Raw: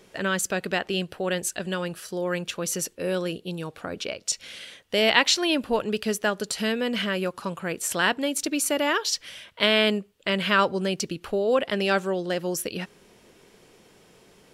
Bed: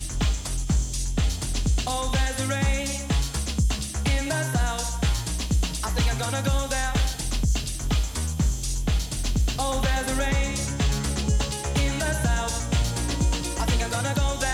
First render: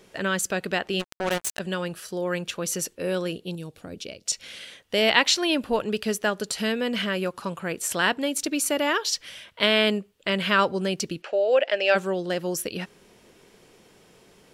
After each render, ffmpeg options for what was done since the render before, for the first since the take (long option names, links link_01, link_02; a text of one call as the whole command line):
ffmpeg -i in.wav -filter_complex "[0:a]asplit=3[link_01][link_02][link_03];[link_01]afade=type=out:start_time=0.99:duration=0.02[link_04];[link_02]acrusher=bits=3:mix=0:aa=0.5,afade=type=in:start_time=0.99:duration=0.02,afade=type=out:start_time=1.58:duration=0.02[link_05];[link_03]afade=type=in:start_time=1.58:duration=0.02[link_06];[link_04][link_05][link_06]amix=inputs=3:normalize=0,asettb=1/sr,asplit=3[link_07][link_08][link_09];[link_07]atrim=end=3.554[link_10];[link_08]atrim=start=3.55:end=4.26,asetpts=PTS-STARTPTS,afade=type=in:duration=0.004:curve=qsin,afade=type=out:start_time=0.706:duration=0.004:curve=qsin,equalizer=frequency=1200:width=0.55:gain=-13.5[link_11];[link_09]atrim=start=4.256[link_12];[link_10][link_11]acrossfade=duration=0.004:curve1=hsin:curve2=qsin[link_13];[link_13][link_12]acrossfade=duration=0.004:curve1=qsin:curve2=hsin,asplit=3[link_14][link_15][link_16];[link_14]afade=type=out:start_time=11.21:duration=0.02[link_17];[link_15]highpass=frequency=370:width=0.5412,highpass=frequency=370:width=1.3066,equalizer=frequency=410:width_type=q:width=4:gain=-5,equalizer=frequency=590:width_type=q:width=4:gain=9,equalizer=frequency=1100:width_type=q:width=4:gain=-9,equalizer=frequency=1700:width_type=q:width=4:gain=4,equalizer=frequency=2600:width_type=q:width=4:gain=6,equalizer=frequency=3800:width_type=q:width=4:gain=-4,lowpass=frequency=6700:width=0.5412,lowpass=frequency=6700:width=1.3066,afade=type=in:start_time=11.21:duration=0.02,afade=type=out:start_time=11.94:duration=0.02[link_18];[link_16]afade=type=in:start_time=11.94:duration=0.02[link_19];[link_17][link_18][link_19]amix=inputs=3:normalize=0" out.wav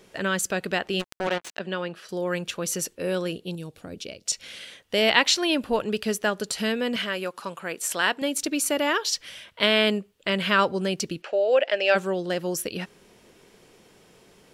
ffmpeg -i in.wav -filter_complex "[0:a]asettb=1/sr,asplit=3[link_01][link_02][link_03];[link_01]atrim=end=1.274[link_04];[link_02]atrim=start=1.27:end=2.09,asetpts=PTS-STARTPTS,afade=type=in:duration=0.004:curve=qsin,afade=type=out:start_time=0.816:duration=0.004:curve=qsin,acrossover=split=170 4800:gain=0.158 1 0.112[link_05][link_06][link_07];[link_05][link_06][link_07]amix=inputs=3:normalize=0[link_08];[link_03]atrim=start=2.086[link_09];[link_04][link_08]acrossfade=duration=0.004:curve1=hsin:curve2=qsin[link_10];[link_10][link_09]acrossfade=duration=0.004:curve1=qsin:curve2=hsin,asettb=1/sr,asplit=3[link_11][link_12][link_13];[link_11]atrim=end=6.964[link_14];[link_12]atrim=start=6.96:end=8.22,asetpts=PTS-STARTPTS,afade=type=in:duration=0.004:curve=qsin,afade=type=out:start_time=1.256:duration=0.004:curve=qsin,highpass=frequency=440:poles=1[link_15];[link_13]atrim=start=8.216[link_16];[link_14][link_15]acrossfade=duration=0.004:curve1=hsin:curve2=qsin[link_17];[link_17][link_16]acrossfade=duration=0.004:curve1=qsin:curve2=hsin" out.wav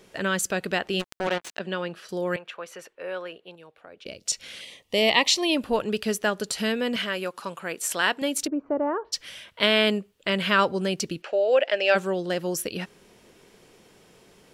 ffmpeg -i in.wav -filter_complex "[0:a]asettb=1/sr,asplit=3[link_01][link_02][link_03];[link_01]atrim=end=2.364[link_04];[link_02]atrim=start=2.36:end=4.06,asetpts=PTS-STARTPTS,afade=type=in:duration=0.004:curve=qsin,afade=type=out:start_time=1.696:duration=0.004:curve=qsin,acrossover=split=520 2700:gain=0.0794 1 0.0794[link_05][link_06][link_07];[link_05][link_06][link_07]amix=inputs=3:normalize=0[link_08];[link_03]atrim=start=4.056[link_09];[link_04][link_08]acrossfade=duration=0.004:curve1=hsin:curve2=qsin[link_10];[link_10][link_09]acrossfade=duration=0.004:curve1=qsin:curve2=hsin,asettb=1/sr,asplit=3[link_11][link_12][link_13];[link_11]atrim=end=4.614[link_14];[link_12]atrim=start=4.61:end=5.57,asetpts=PTS-STARTPTS,afade=type=in:duration=0.004:curve=qsin,afade=type=out:start_time=0.956:duration=0.004:curve=qsin,asuperstop=centerf=1500:order=4:qfactor=2.3[link_15];[link_13]atrim=start=5.566[link_16];[link_14][link_15]acrossfade=duration=0.004:curve1=hsin:curve2=qsin[link_17];[link_17][link_16]acrossfade=duration=0.004:curve1=qsin:curve2=hsin,asplit=3[link_18][link_19][link_20];[link_18]afade=type=out:start_time=8.46:duration=0.02[link_21];[link_19]lowpass=frequency=1100:width=0.5412,lowpass=frequency=1100:width=1.3066,afade=type=in:start_time=8.46:duration=0.02,afade=type=out:start_time=9.12:duration=0.02[link_22];[link_20]afade=type=in:start_time=9.12:duration=0.02[link_23];[link_21][link_22][link_23]amix=inputs=3:normalize=0" out.wav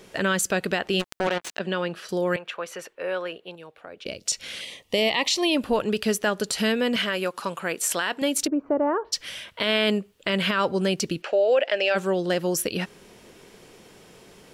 ffmpeg -i in.wav -filter_complex "[0:a]asplit=2[link_01][link_02];[link_02]acompressor=threshold=-29dB:ratio=6,volume=-2dB[link_03];[link_01][link_03]amix=inputs=2:normalize=0,alimiter=limit=-13dB:level=0:latency=1:release=27" out.wav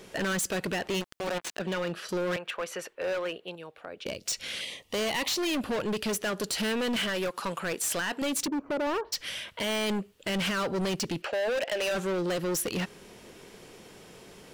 ffmpeg -i in.wav -af "asoftclip=type=hard:threshold=-27dB" out.wav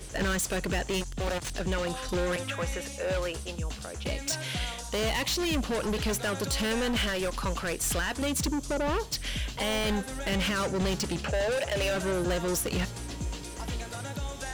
ffmpeg -i in.wav -i bed.wav -filter_complex "[1:a]volume=-11.5dB[link_01];[0:a][link_01]amix=inputs=2:normalize=0" out.wav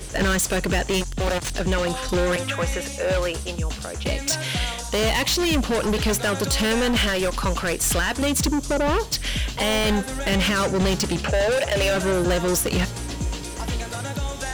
ffmpeg -i in.wav -af "volume=7.5dB" out.wav